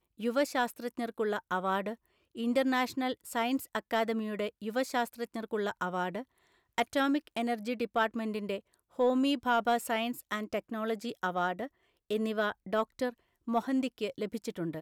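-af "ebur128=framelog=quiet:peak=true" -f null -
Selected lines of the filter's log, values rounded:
Integrated loudness:
  I:         -32.7 LUFS
  Threshold: -43.0 LUFS
Loudness range:
  LRA:         2.9 LU
  Threshold: -52.9 LUFS
  LRA low:   -34.4 LUFS
  LRA high:  -31.4 LUFS
True peak:
  Peak:      -16.4 dBFS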